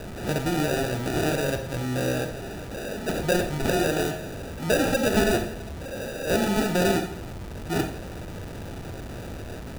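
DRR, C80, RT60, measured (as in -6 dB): 6.5 dB, 13.0 dB, 0.45 s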